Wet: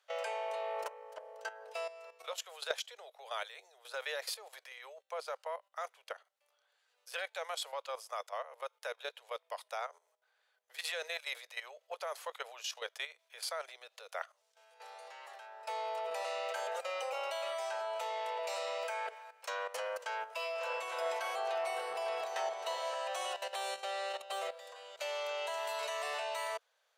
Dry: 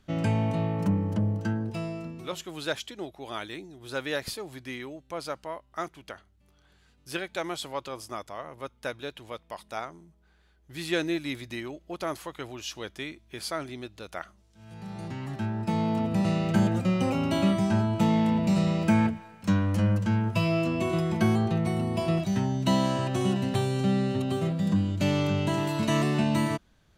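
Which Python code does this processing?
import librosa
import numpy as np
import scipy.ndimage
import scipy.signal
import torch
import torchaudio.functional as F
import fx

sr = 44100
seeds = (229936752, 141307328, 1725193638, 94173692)

y = scipy.signal.sosfilt(scipy.signal.butter(16, 460.0, 'highpass', fs=sr, output='sos'), x)
y = fx.level_steps(y, sr, step_db=13)
y = fx.echo_opening(y, sr, ms=284, hz=750, octaves=1, feedback_pct=70, wet_db=-3, at=(20.54, 22.94), fade=0.02)
y = F.gain(torch.from_numpy(y), 1.0).numpy()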